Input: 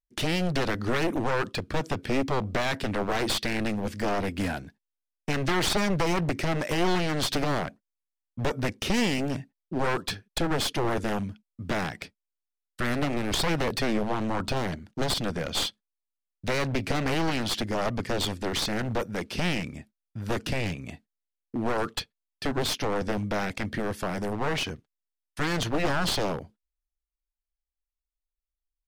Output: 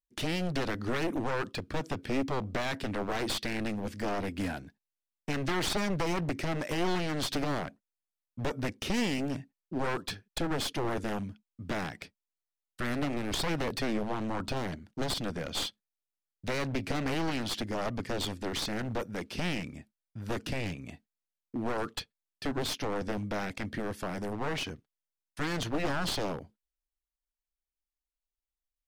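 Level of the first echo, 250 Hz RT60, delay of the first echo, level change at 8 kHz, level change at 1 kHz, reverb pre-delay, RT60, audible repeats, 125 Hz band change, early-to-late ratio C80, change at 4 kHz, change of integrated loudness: none, none, none, -5.5 dB, -5.5 dB, none, none, none, -5.5 dB, none, -5.5 dB, -5.0 dB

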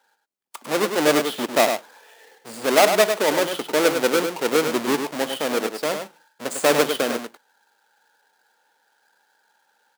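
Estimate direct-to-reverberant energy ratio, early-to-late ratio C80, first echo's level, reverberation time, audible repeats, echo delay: none, none, -7.0 dB, none, 1, 0.101 s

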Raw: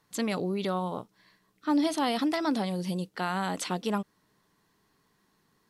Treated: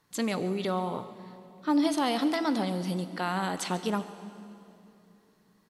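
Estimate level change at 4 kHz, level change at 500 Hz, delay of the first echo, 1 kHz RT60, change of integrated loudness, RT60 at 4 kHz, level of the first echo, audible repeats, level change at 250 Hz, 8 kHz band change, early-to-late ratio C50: +0.5 dB, +0.5 dB, 0.139 s, 2.6 s, +0.5 dB, 2.3 s, -18.0 dB, 1, +0.5 dB, +0.5 dB, 11.5 dB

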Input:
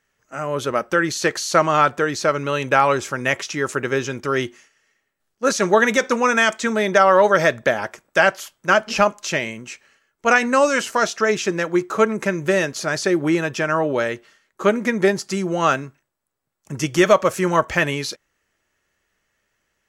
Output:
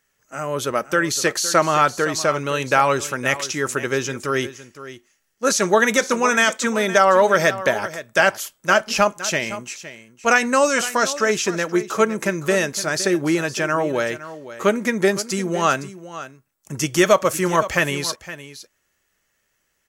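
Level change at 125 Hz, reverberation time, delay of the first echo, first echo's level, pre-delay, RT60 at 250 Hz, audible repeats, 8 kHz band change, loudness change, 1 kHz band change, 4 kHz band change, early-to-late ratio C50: -1.0 dB, none, 0.513 s, -14.5 dB, none, none, 1, +5.0 dB, 0.0 dB, -0.5 dB, +2.0 dB, none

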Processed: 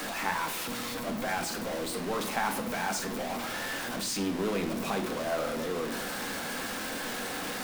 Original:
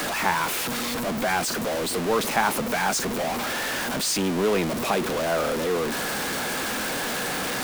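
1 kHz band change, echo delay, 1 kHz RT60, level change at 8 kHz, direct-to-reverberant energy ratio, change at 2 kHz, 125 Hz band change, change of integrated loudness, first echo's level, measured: -7.5 dB, none, 0.65 s, -8.0 dB, 4.0 dB, -7.5 dB, -7.5 dB, -7.5 dB, none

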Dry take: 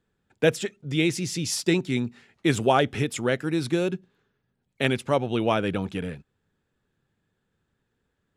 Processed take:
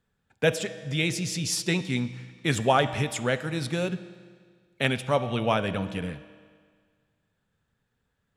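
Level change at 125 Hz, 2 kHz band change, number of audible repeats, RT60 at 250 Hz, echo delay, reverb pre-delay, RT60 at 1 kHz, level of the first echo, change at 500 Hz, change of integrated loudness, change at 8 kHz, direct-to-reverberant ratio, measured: 0.0 dB, 0.0 dB, none, 1.8 s, none, 6 ms, 1.8 s, none, -2.5 dB, -2.0 dB, 0.0 dB, 11.5 dB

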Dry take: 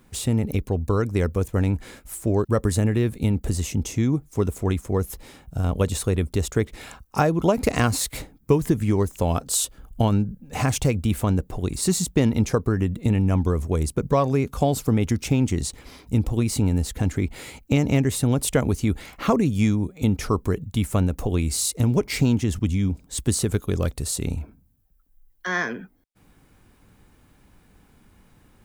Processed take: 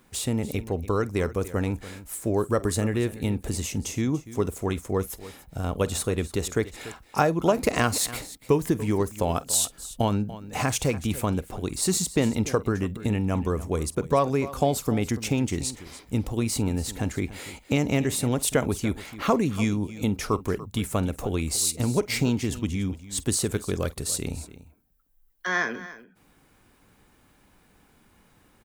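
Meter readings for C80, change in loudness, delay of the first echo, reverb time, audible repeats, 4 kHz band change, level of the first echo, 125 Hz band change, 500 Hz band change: none, -3.0 dB, 48 ms, none, 2, 0.0 dB, -20.0 dB, -6.5 dB, -1.5 dB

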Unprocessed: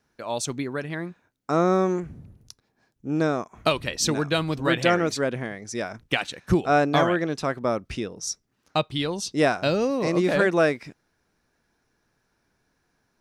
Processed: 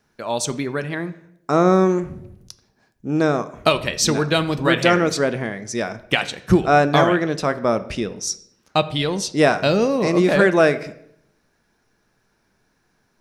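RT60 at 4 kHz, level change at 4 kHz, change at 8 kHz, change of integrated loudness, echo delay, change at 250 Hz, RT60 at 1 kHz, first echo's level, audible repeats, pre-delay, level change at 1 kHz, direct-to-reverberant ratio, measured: 0.55 s, +5.0 dB, +5.5 dB, +5.5 dB, none, +5.5 dB, 0.65 s, none, none, 4 ms, +5.0 dB, 11.5 dB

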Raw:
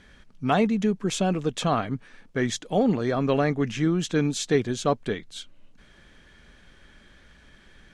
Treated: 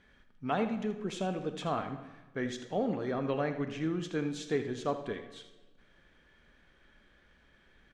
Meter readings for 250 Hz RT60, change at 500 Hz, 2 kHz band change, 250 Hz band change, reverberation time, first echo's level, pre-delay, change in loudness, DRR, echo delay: 1.3 s, -8.5 dB, -9.0 dB, -10.0 dB, 1.1 s, -12.5 dB, 25 ms, -9.5 dB, 7.5 dB, 80 ms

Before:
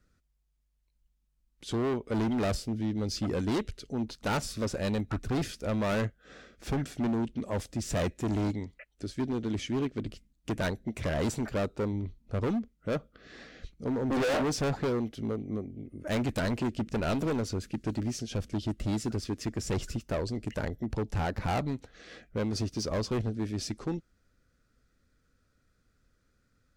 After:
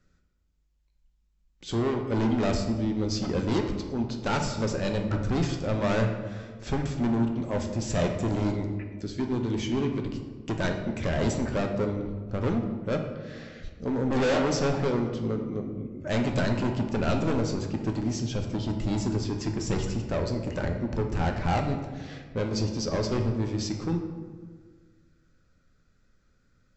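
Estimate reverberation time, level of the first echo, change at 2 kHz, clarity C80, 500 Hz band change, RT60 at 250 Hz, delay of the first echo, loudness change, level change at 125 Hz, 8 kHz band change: 1.6 s, none, +3.0 dB, 8.0 dB, +4.0 dB, 2.1 s, none, +3.5 dB, +4.5 dB, +1.5 dB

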